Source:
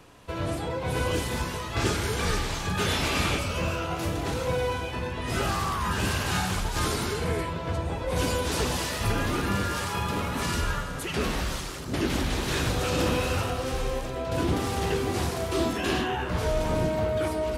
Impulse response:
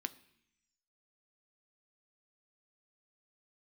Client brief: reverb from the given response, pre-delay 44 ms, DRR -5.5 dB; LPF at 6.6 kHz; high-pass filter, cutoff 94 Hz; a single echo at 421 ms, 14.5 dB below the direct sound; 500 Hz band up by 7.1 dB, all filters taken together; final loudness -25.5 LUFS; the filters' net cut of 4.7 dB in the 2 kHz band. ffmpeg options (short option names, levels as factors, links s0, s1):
-filter_complex "[0:a]highpass=94,lowpass=6600,equalizer=f=500:t=o:g=9,equalizer=f=2000:t=o:g=-7,aecho=1:1:421:0.188,asplit=2[s0][s1];[1:a]atrim=start_sample=2205,adelay=44[s2];[s1][s2]afir=irnorm=-1:irlink=0,volume=2.11[s3];[s0][s3]amix=inputs=2:normalize=0,volume=0.562"